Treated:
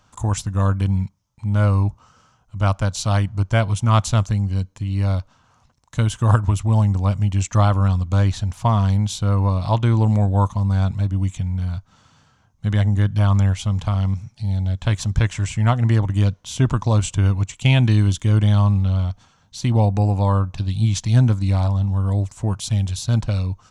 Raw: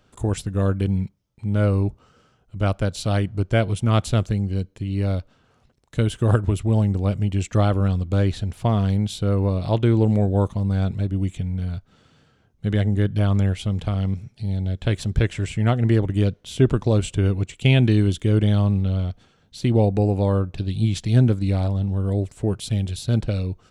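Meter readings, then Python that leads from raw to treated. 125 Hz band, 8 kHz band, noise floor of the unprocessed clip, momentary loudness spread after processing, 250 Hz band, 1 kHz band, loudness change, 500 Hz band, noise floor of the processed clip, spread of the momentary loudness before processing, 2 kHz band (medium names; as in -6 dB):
+3.0 dB, +7.0 dB, -61 dBFS, 7 LU, -1.5 dB, +6.0 dB, +2.0 dB, -3.5 dB, -59 dBFS, 8 LU, +2.0 dB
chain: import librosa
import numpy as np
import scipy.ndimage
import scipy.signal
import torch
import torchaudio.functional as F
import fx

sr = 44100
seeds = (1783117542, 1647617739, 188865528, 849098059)

y = fx.graphic_eq_15(x, sr, hz=(100, 400, 1000, 6300), db=(4, -10, 11, 10))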